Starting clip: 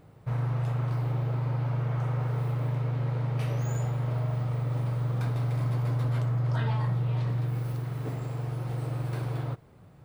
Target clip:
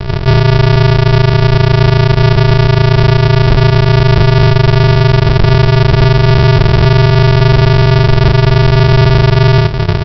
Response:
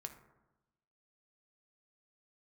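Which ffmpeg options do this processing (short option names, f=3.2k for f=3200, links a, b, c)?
-filter_complex "[0:a]bandreject=f=60:t=h:w=6,bandreject=f=120:t=h:w=6,bandreject=f=180:t=h:w=6,asplit=2[a][b];[b]adelay=62,lowpass=f=1.9k:p=1,volume=-6dB,asplit=2[c][d];[d]adelay=62,lowpass=f=1.9k:p=1,volume=0.36,asplit=2[e][f];[f]adelay=62,lowpass=f=1.9k:p=1,volume=0.36,asplit=2[g][h];[h]adelay=62,lowpass=f=1.9k:p=1,volume=0.36[i];[a][c][e][g][i]amix=inputs=5:normalize=0,asplit=2[j][k];[k]acompressor=threshold=-45dB:ratio=6,volume=-1dB[l];[j][l]amix=inputs=2:normalize=0,asoftclip=type=tanh:threshold=-37dB,asplit=2[m][n];[n]adelay=43,volume=-3.5dB[o];[m][o]amix=inputs=2:normalize=0,aresample=11025,acrusher=samples=42:mix=1:aa=0.000001,aresample=44100,alimiter=level_in=35.5dB:limit=-1dB:release=50:level=0:latency=1,volume=-1dB"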